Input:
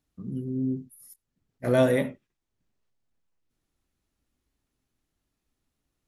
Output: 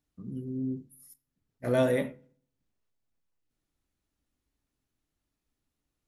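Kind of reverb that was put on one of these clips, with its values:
feedback delay network reverb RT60 0.56 s, low-frequency decay 1.2×, high-frequency decay 0.6×, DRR 16 dB
level −4 dB

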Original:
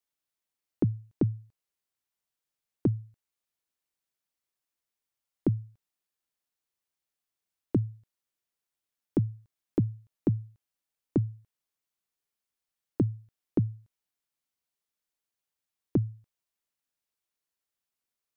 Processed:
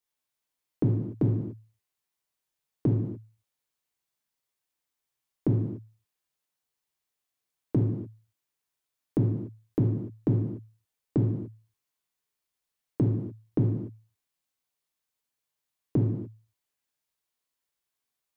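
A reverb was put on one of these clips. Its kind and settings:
reverb whose tail is shaped and stops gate 320 ms falling, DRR −2 dB
level −1 dB

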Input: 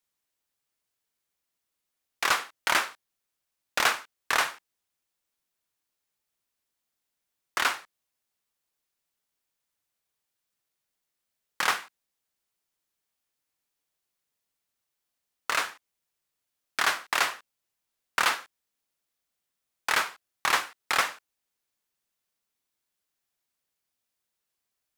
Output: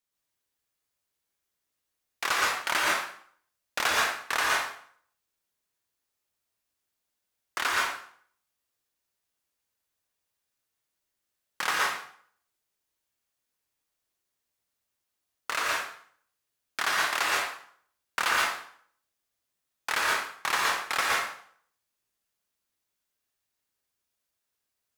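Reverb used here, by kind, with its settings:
dense smooth reverb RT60 0.57 s, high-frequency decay 0.85×, pre-delay 105 ms, DRR −3 dB
level −4 dB

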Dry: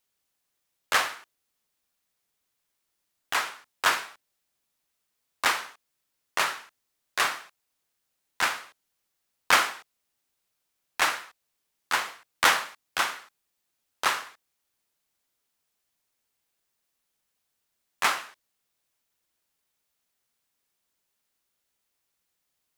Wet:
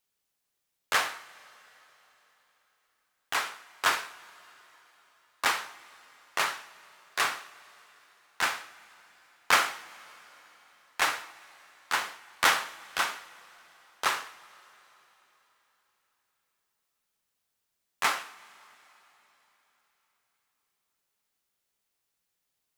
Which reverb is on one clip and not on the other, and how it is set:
coupled-rooms reverb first 0.29 s, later 4 s, from −18 dB, DRR 11 dB
level −2.5 dB

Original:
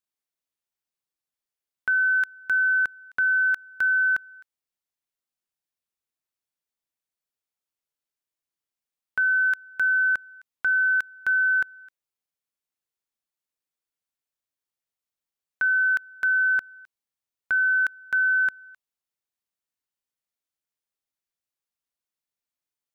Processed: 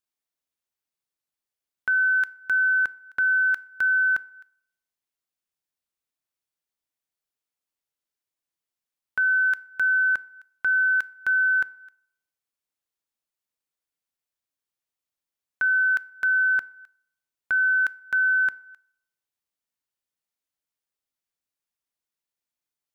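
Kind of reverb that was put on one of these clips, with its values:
feedback delay network reverb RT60 0.69 s, low-frequency decay 0.7×, high-frequency decay 0.55×, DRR 18.5 dB

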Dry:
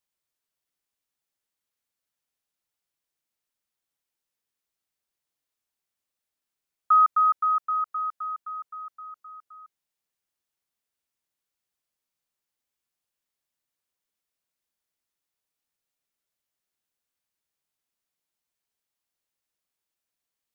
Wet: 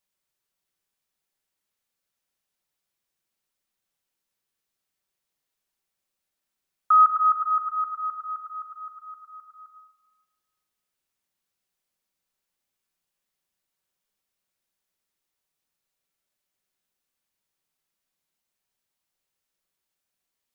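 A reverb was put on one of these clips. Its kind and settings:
rectangular room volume 1,600 cubic metres, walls mixed, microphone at 1.1 metres
level +2 dB

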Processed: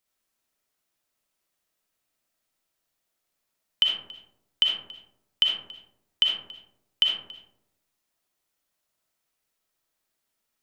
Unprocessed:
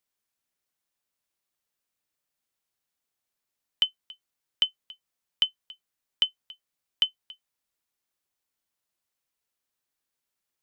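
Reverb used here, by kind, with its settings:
comb and all-pass reverb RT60 0.89 s, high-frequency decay 0.3×, pre-delay 20 ms, DRR −2 dB
level +2 dB

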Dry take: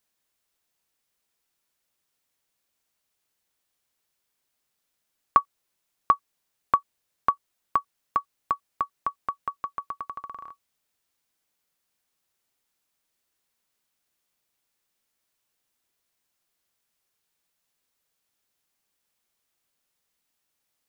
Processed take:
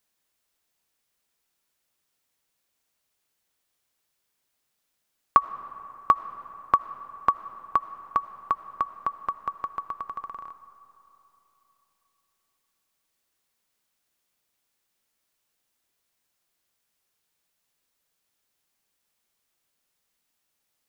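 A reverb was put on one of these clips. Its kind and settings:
comb and all-pass reverb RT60 3.5 s, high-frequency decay 0.55×, pre-delay 40 ms, DRR 13.5 dB
level +1 dB

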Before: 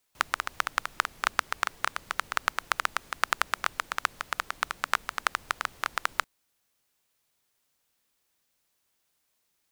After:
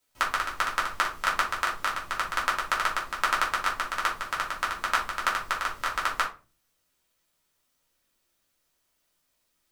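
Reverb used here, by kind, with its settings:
rectangular room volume 160 cubic metres, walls furnished, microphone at 2.8 metres
level −4 dB

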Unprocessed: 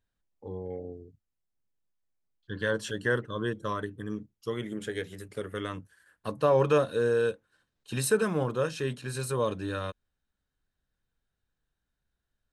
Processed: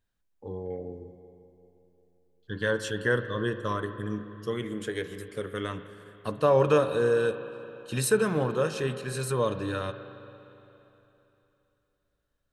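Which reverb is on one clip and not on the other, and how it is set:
spring reverb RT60 3.2 s, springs 39/57 ms, chirp 35 ms, DRR 10 dB
level +1.5 dB

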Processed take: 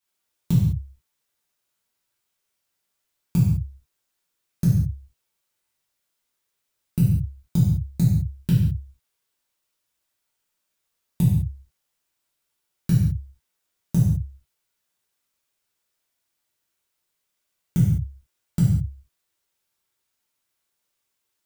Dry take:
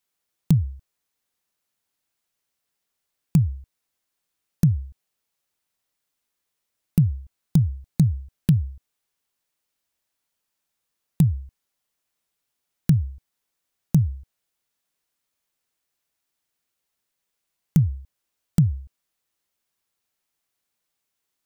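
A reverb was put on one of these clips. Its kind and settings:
reverb whose tail is shaped and stops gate 230 ms falling, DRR −8 dB
level −6.5 dB

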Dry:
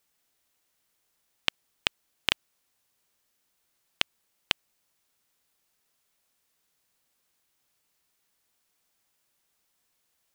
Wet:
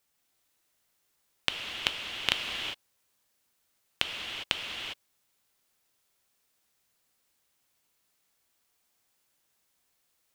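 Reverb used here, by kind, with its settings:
reverb whose tail is shaped and stops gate 430 ms flat, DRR 1 dB
level −2 dB

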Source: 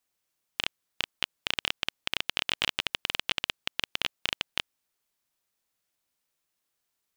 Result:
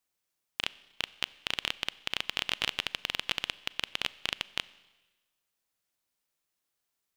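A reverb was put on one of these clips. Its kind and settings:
four-comb reverb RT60 1.2 s, combs from 30 ms, DRR 19 dB
level −2.5 dB

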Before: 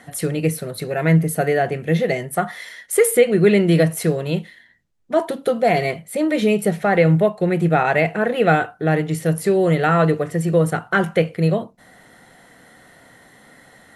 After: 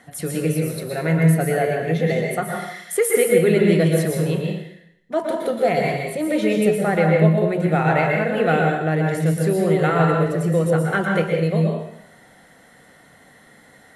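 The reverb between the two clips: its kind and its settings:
dense smooth reverb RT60 0.76 s, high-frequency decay 0.95×, pre-delay 105 ms, DRR 0 dB
level −4.5 dB

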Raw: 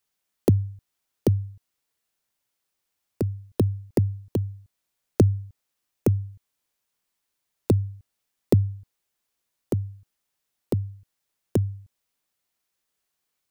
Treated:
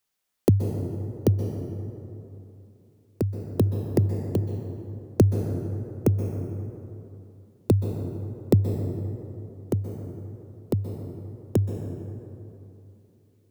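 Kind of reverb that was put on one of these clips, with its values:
dense smooth reverb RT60 3 s, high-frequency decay 0.45×, pre-delay 115 ms, DRR 5.5 dB

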